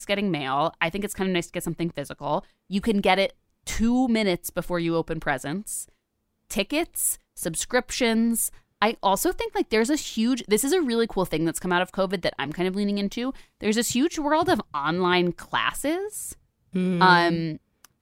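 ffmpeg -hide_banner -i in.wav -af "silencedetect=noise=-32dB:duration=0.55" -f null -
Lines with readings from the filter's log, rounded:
silence_start: 5.83
silence_end: 6.50 | silence_duration: 0.68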